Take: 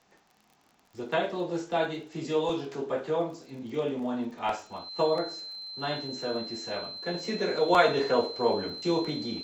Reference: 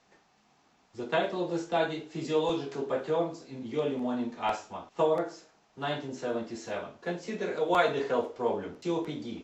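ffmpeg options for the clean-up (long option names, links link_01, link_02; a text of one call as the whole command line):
ffmpeg -i in.wav -af "adeclick=threshold=4,bandreject=frequency=4100:width=30,asetnsamples=nb_out_samples=441:pad=0,asendcmd='7.14 volume volume -3.5dB',volume=0dB" out.wav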